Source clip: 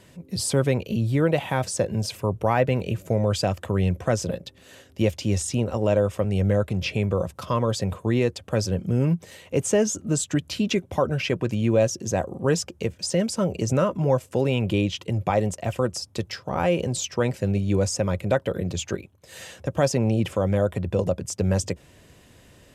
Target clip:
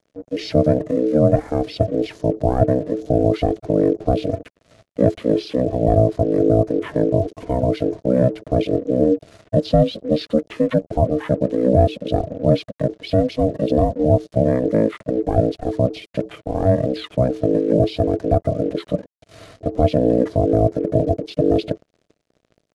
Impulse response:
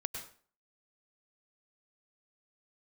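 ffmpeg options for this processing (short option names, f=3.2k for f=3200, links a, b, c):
-af "bandreject=f=60:t=h:w=6,bandreject=f=120:t=h:w=6,acrusher=bits=6:mix=0:aa=0.5,asetrate=23361,aresample=44100,atempo=1.88775,lowshelf=f=380:t=q:w=1.5:g=9,aeval=exprs='val(0)*sin(2*PI*380*n/s)':c=same,volume=-1dB"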